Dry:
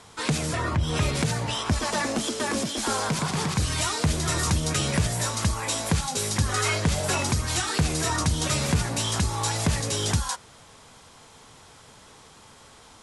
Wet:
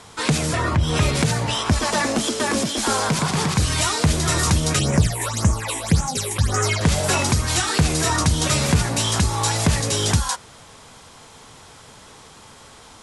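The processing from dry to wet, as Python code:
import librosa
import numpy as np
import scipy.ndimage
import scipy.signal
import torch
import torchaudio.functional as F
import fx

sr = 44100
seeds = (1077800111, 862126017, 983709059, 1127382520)

y = fx.phaser_stages(x, sr, stages=8, low_hz=170.0, high_hz=4200.0, hz=1.8, feedback_pct=35, at=(4.79, 6.81))
y = y * 10.0 ** (5.5 / 20.0)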